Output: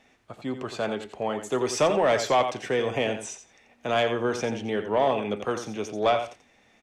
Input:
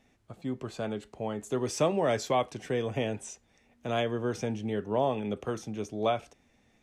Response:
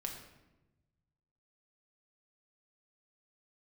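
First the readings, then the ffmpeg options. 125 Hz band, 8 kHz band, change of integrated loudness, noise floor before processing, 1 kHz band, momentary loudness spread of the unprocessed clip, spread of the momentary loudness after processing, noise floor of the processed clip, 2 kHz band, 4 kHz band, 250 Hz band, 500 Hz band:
-1.5 dB, +5.0 dB, +5.0 dB, -67 dBFS, +6.5 dB, 9 LU, 12 LU, -61 dBFS, +8.5 dB, +7.0 dB, +2.0 dB, +5.5 dB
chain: -filter_complex "[0:a]aecho=1:1:87|174:0.316|0.0506,asplit=2[a][b];[b]highpass=f=720:p=1,volume=13dB,asoftclip=type=tanh:threshold=-13.5dB[c];[a][c]amix=inputs=2:normalize=0,lowpass=f=4k:p=1,volume=-6dB,volume=2dB"

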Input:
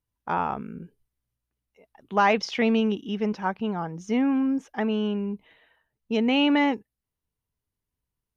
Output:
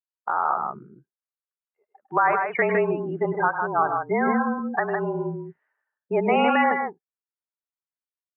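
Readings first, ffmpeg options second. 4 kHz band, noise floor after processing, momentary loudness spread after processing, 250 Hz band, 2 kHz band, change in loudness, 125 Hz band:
n/a, under -85 dBFS, 11 LU, -4.5 dB, +5.0 dB, +1.5 dB, +1.5 dB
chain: -filter_complex "[0:a]lowpass=f=1.9k:w=0.5412,lowpass=f=1.9k:w=1.3066,afftdn=nr=30:nf=-35,highpass=560,equalizer=f=1.4k:t=o:w=1.1:g=10.5,asplit=2[a][b];[b]acompressor=threshold=-32dB:ratio=6,volume=2dB[c];[a][c]amix=inputs=2:normalize=0,alimiter=limit=-13.5dB:level=0:latency=1:release=371,dynaudnorm=f=110:g=9:m=4dB,afreqshift=-36,asplit=2[d][e];[e]aecho=0:1:102|157.4:0.251|0.562[f];[d][f]amix=inputs=2:normalize=0"

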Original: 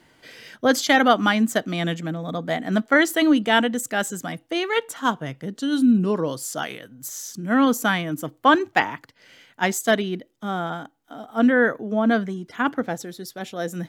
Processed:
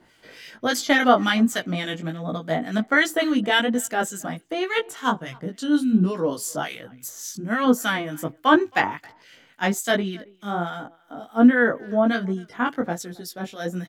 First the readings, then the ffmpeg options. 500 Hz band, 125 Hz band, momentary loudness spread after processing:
-1.0 dB, -0.5 dB, 15 LU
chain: -filter_complex "[0:a]asplit=2[a][b];[b]adelay=270,highpass=300,lowpass=3.4k,asoftclip=type=hard:threshold=-11dB,volume=-25dB[c];[a][c]amix=inputs=2:normalize=0,acrossover=split=1500[d][e];[d]aeval=exprs='val(0)*(1-0.7/2+0.7/2*cos(2*PI*3.5*n/s))':c=same[f];[e]aeval=exprs='val(0)*(1-0.7/2-0.7/2*cos(2*PI*3.5*n/s))':c=same[g];[f][g]amix=inputs=2:normalize=0,flanger=delay=16:depth=4.4:speed=1.3,volume=5.5dB"

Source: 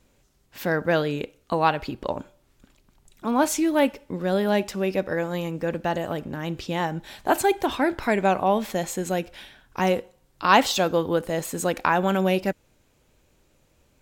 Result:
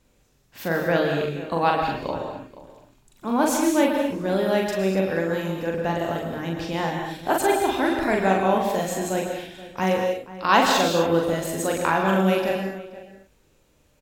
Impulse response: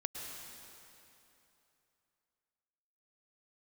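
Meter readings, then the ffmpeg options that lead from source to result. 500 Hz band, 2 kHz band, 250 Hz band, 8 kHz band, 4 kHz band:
+1.5 dB, +1.5 dB, +1.5 dB, +1.0 dB, +1.5 dB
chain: -filter_complex "[0:a]asplit=2[a][b];[b]adelay=42,volume=-3dB[c];[a][c]amix=inputs=2:normalize=0,asplit=2[d][e];[e]adelay=478.1,volume=-16dB,highshelf=f=4k:g=-10.8[f];[d][f]amix=inputs=2:normalize=0[g];[1:a]atrim=start_sample=2205,afade=t=out:st=0.3:d=0.01,atrim=end_sample=13671[h];[g][h]afir=irnorm=-1:irlink=0"

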